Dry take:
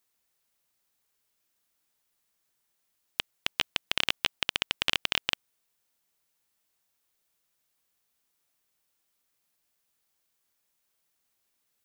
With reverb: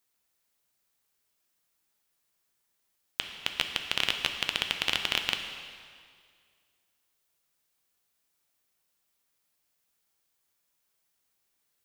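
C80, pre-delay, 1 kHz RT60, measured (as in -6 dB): 7.5 dB, 4 ms, 2.0 s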